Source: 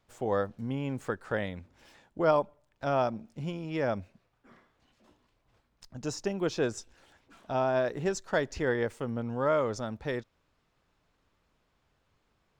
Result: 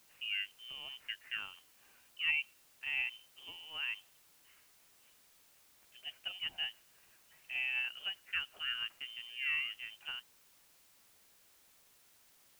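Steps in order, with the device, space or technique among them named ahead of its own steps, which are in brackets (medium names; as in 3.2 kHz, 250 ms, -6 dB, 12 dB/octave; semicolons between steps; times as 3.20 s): scrambled radio voice (band-pass 330–3100 Hz; frequency inversion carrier 3.3 kHz; white noise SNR 23 dB); trim -8.5 dB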